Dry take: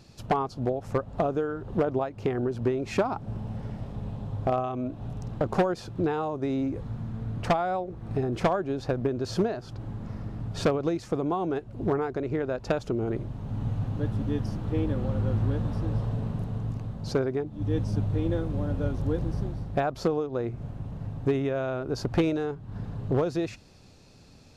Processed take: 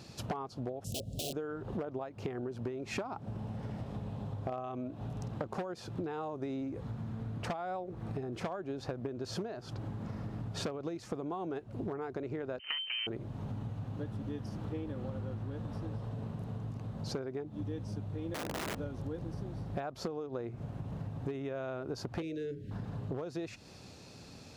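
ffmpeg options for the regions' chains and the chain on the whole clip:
ffmpeg -i in.wav -filter_complex "[0:a]asettb=1/sr,asplit=3[link_01][link_02][link_03];[link_01]atrim=end=0.844[link_04];[link_02]atrim=start=0.84:end=1.33,asetpts=PTS-STARTPTS,afade=type=in:duration=0.004:curve=qsin,afade=type=out:start_time=0.486:duration=0.004:curve=qsin,bass=frequency=250:gain=9,treble=frequency=4000:gain=15,aeval=exprs='(mod(11.9*val(0)+1,2)-1)/11.9':channel_layout=same,asuperstop=centerf=1400:order=12:qfactor=0.65[link_05];[link_03]atrim=start=1.326[link_06];[link_04][link_05]acrossfade=duration=0.004:curve1=hsin:curve2=qsin[link_07];[link_07][link_06]acrossfade=duration=0.004:curve1=qsin:curve2=hsin,asettb=1/sr,asplit=3[link_08][link_09][link_10];[link_08]atrim=end=12.594[link_11];[link_09]atrim=start=12.59:end=13.07,asetpts=PTS-STARTPTS,afade=type=in:duration=0.004:curve=qsin,afade=type=out:start_time=0.476:duration=0.004:curve=qsin,highshelf=frequency=2200:gain=-10,aeval=exprs='abs(val(0))':channel_layout=same,lowpass=frequency=2600:width_type=q:width=0.5098,lowpass=frequency=2600:width_type=q:width=0.6013,lowpass=frequency=2600:width_type=q:width=0.9,lowpass=frequency=2600:width_type=q:width=2.563,afreqshift=-3100[link_12];[link_10]atrim=start=13.066[link_13];[link_11][link_12]acrossfade=duration=0.004:curve1=hsin:curve2=qsin[link_14];[link_14][link_13]acrossfade=duration=0.004:curve1=qsin:curve2=hsin,asettb=1/sr,asplit=3[link_15][link_16][link_17];[link_15]atrim=end=18.344[link_18];[link_16]atrim=start=18.34:end=18.76,asetpts=PTS-STARTPTS,afade=type=in:duration=0.004:curve=qsin,afade=type=out:start_time=0.416:duration=0.004:curve=qsin,highshelf=frequency=2500:width_type=q:width=3:gain=-7.5,aeval=exprs='(mod(15.8*val(0)+1,2)-1)/15.8':channel_layout=same[link_19];[link_17]atrim=start=18.756[link_20];[link_18][link_19]acrossfade=duration=0.004:curve1=hsin:curve2=qsin[link_21];[link_21][link_20]acrossfade=duration=0.004:curve1=qsin:curve2=hsin,asettb=1/sr,asplit=3[link_22][link_23][link_24];[link_22]atrim=end=22.224[link_25];[link_23]atrim=start=22.22:end=22.71,asetpts=PTS-STARTPTS,afade=type=in:duration=0.004:curve=qsin,afade=type=out:start_time=0.486:duration=0.004:curve=qsin,asuperstop=centerf=970:order=8:qfactor=0.83,bandreject=frequency=60:width_type=h:width=6,bandreject=frequency=120:width_type=h:width=6,bandreject=frequency=180:width_type=h:width=6,bandreject=frequency=240:width_type=h:width=6,bandreject=frequency=300:width_type=h:width=6,bandreject=frequency=360:width_type=h:width=6,bandreject=frequency=420:width_type=h:width=6,bandreject=frequency=480:width_type=h:width=6,bandreject=frequency=540:width_type=h:width=6[link_26];[link_24]atrim=start=22.706[link_27];[link_25][link_26]acrossfade=duration=0.004:curve1=hsin:curve2=qsin[link_28];[link_28][link_27]acrossfade=duration=0.004:curve1=qsin:curve2=hsin,highpass=66,acompressor=threshold=-38dB:ratio=10,lowshelf=frequency=180:gain=-3.5,volume=4dB" out.wav

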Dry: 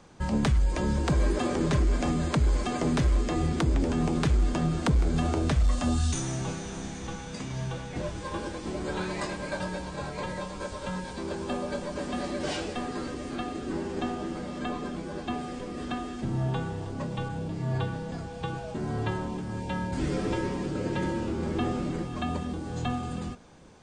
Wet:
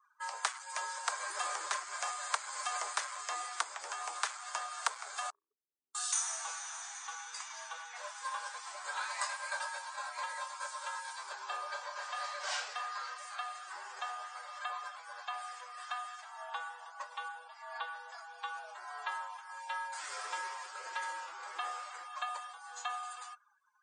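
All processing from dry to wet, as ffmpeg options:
ffmpeg -i in.wav -filter_complex "[0:a]asettb=1/sr,asplit=3[link_01][link_02][link_03];[link_01]atrim=end=5.304[link_04];[link_02]atrim=start=5.3:end=5.95,asetpts=PTS-STARTPTS,afade=type=in:duration=0.004:curve=qsin,afade=type=out:start_time=0.646:duration=0.004:curve=qsin,asuperpass=centerf=330:order=12:qfactor=1.7,acompressor=threshold=-39dB:ratio=2.5:attack=3.2:release=140:knee=1:detection=peak[link_05];[link_03]atrim=start=5.946[link_06];[link_04][link_05]acrossfade=duration=0.004:curve1=hsin:curve2=qsin[link_07];[link_07][link_06]acrossfade=duration=0.004:curve1=qsin:curve2=hsin,asettb=1/sr,asplit=3[link_08][link_09][link_10];[link_08]atrim=end=11.334[link_11];[link_09]atrim=start=11.33:end=13.18,asetpts=PTS-STARTPTS,afade=type=in:duration=0.004:curve=qsin,afade=type=out:start_time=1.846:duration=0.004:curve=qsin,lowpass=6800,asplit=2[link_12][link_13];[link_13]adelay=36,volume=-8dB[link_14];[link_12][link_14]amix=inputs=2:normalize=0,atrim=end_sample=81585[link_15];[link_10]atrim=start=13.176[link_16];[link_11][link_15]acrossfade=duration=0.004:curve1=hsin:curve2=qsin[link_17];[link_17][link_16]acrossfade=duration=0.004:curve1=qsin:curve2=hsin,highpass=frequency=1100:width=0.5412,highpass=frequency=1100:width=1.3066,afftdn=noise_reduction=31:noise_floor=-55,equalizer=frequency=2800:width_type=o:width=2.3:gain=-14.5,volume=10dB" out.wav

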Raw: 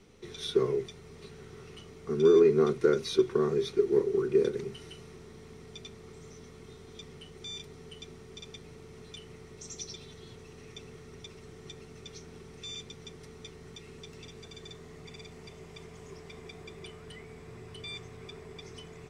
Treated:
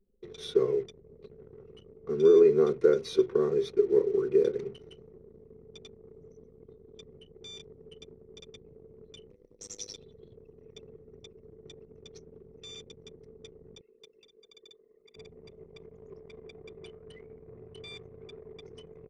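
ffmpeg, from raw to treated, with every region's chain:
ffmpeg -i in.wav -filter_complex "[0:a]asettb=1/sr,asplit=3[link_01][link_02][link_03];[link_01]atrim=end=9.304[link_04];[link_02]atrim=start=9.3:end=9.98,asetpts=PTS-STARTPTS,afade=type=in:duration=0.004:curve=qsin,afade=type=out:start_time=0.676:duration=0.004:curve=qsin,highshelf=frequency=3100:gain=10,aeval=exprs='val(0)*sin(2*PI*52*n/s)':channel_layout=same[link_05];[link_03]atrim=start=9.976[link_06];[link_04][link_05]acrossfade=duration=0.004:curve1=hsin:curve2=qsin[link_07];[link_07][link_06]acrossfade=duration=0.004:curve1=qsin:curve2=hsin,asettb=1/sr,asplit=3[link_08][link_09][link_10];[link_08]atrim=end=13.814[link_11];[link_09]atrim=start=13.81:end=15.16,asetpts=PTS-STARTPTS,afade=type=in:duration=0.004:curve=qsin,afade=type=out:start_time=1.346:duration=0.004:curve=qsin,highpass=frequency=530:poles=1,acrusher=bits=4:mode=log:mix=0:aa=0.000001[link_12];[link_10]atrim=start=15.156[link_13];[link_11][link_12]acrossfade=duration=0.004:curve1=hsin:curve2=qsin[link_14];[link_14][link_13]acrossfade=duration=0.004:curve1=qsin:curve2=hsin,anlmdn=0.0398,equalizer=frequency=490:width=2:gain=9.5,volume=-4.5dB" out.wav

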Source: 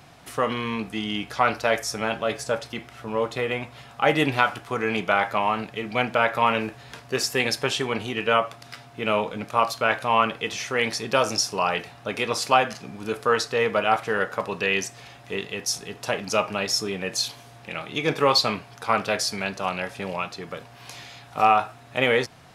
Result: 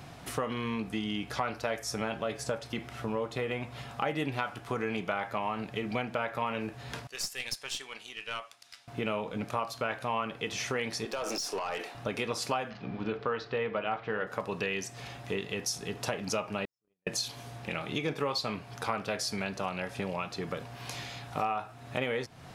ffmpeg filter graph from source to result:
ffmpeg -i in.wav -filter_complex "[0:a]asettb=1/sr,asplit=3[link_01][link_02][link_03];[link_01]atrim=end=7.074[link_04];[link_02]atrim=start=7.07:end=8.88,asetpts=PTS-STARTPTS,afade=type=in:duration=0.004:curve=qsin,afade=type=out:start_time=1.806:duration=0.004:curve=qsin,aderivative,adynamicsmooth=sensitivity=4.5:basefreq=7900,aeval=exprs='(tanh(10*val(0)+0.45)-tanh(0.45))/10':channel_layout=same[link_05];[link_03]atrim=start=8.876[link_06];[link_04][link_05]acrossfade=duration=0.004:curve1=hsin:curve2=qsin[link_07];[link_07][link_06]acrossfade=duration=0.004:curve1=qsin:curve2=hsin,asettb=1/sr,asplit=3[link_08][link_09][link_10];[link_08]atrim=end=11.054[link_11];[link_09]atrim=start=11.05:end=11.95,asetpts=PTS-STARTPTS,afade=type=in:duration=0.004:curve=qsin,afade=type=out:start_time=0.896:duration=0.004:curve=qsin,highpass=frequency=290:width=0.5412,highpass=frequency=290:width=1.3066,acompressor=threshold=-25dB:ratio=12:attack=3.2:release=140:knee=1:detection=peak,aeval=exprs='(tanh(22.4*val(0)+0.1)-tanh(0.1))/22.4':channel_layout=same[link_12];[link_10]atrim=start=11.946[link_13];[link_11][link_12]acrossfade=duration=0.004:curve1=hsin:curve2=qsin[link_14];[link_14][link_13]acrossfade=duration=0.004:curve1=qsin:curve2=hsin,asettb=1/sr,asplit=3[link_15][link_16][link_17];[link_15]atrim=end=12.704[link_18];[link_16]atrim=start=12.7:end=14.27,asetpts=PTS-STARTPTS,afade=type=in:duration=0.004:curve=qsin,afade=type=out:start_time=1.566:duration=0.004:curve=qsin,lowpass=frequency=3900:width=0.5412,lowpass=frequency=3900:width=1.3066,bandreject=frequency=50:width_type=h:width=6,bandreject=frequency=100:width_type=h:width=6,bandreject=frequency=150:width_type=h:width=6,bandreject=frequency=200:width_type=h:width=6,bandreject=frequency=250:width_type=h:width=6,bandreject=frequency=300:width_type=h:width=6,bandreject=frequency=350:width_type=h:width=6,bandreject=frequency=400:width_type=h:width=6,bandreject=frequency=450:width_type=h:width=6[link_19];[link_17]atrim=start=14.266[link_20];[link_18][link_19]acrossfade=duration=0.004:curve1=hsin:curve2=qsin[link_21];[link_21][link_20]acrossfade=duration=0.004:curve1=qsin:curve2=hsin,asettb=1/sr,asplit=3[link_22][link_23][link_24];[link_22]atrim=end=16.654[link_25];[link_23]atrim=start=16.65:end=17.07,asetpts=PTS-STARTPTS,afade=type=in:duration=0.004:curve=qsin,afade=type=out:start_time=0.416:duration=0.004:curve=qsin,lowpass=frequency=1800:poles=1,agate=range=-59dB:threshold=-23dB:ratio=16:release=100:detection=peak[link_26];[link_24]atrim=start=17.066[link_27];[link_25][link_26]acrossfade=duration=0.004:curve1=hsin:curve2=qsin[link_28];[link_28][link_27]acrossfade=duration=0.004:curve1=qsin:curve2=hsin,lowshelf=frequency=430:gain=5,acompressor=threshold=-31dB:ratio=4" out.wav

